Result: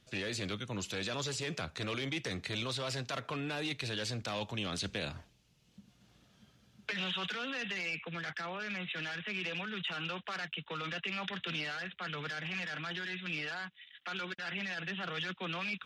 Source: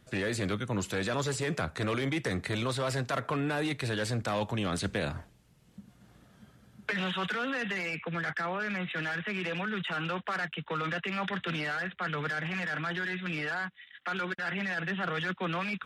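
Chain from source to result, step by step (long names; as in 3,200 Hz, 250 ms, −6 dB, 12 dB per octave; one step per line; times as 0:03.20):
flat-topped bell 4,000 Hz +8.5 dB
level −7.5 dB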